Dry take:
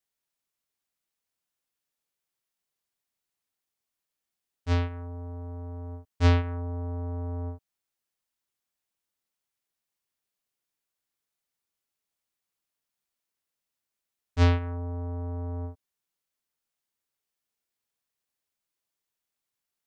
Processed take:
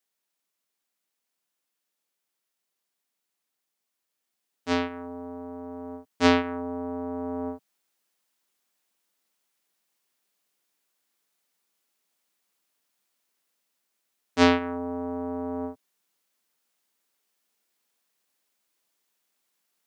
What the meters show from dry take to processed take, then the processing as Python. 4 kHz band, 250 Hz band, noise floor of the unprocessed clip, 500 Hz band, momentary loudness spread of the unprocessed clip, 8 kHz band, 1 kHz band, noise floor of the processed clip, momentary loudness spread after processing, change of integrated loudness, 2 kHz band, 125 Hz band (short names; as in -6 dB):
+8.0 dB, +7.5 dB, under -85 dBFS, +8.0 dB, 15 LU, n/a, +8.0 dB, -83 dBFS, 17 LU, +2.5 dB, +8.0 dB, -15.0 dB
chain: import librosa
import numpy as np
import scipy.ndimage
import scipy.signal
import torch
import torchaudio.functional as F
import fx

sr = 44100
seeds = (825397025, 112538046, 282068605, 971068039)

y = scipy.signal.sosfilt(scipy.signal.butter(4, 170.0, 'highpass', fs=sr, output='sos'), x)
y = fx.rider(y, sr, range_db=5, speed_s=2.0)
y = F.gain(torch.from_numpy(y), 5.0).numpy()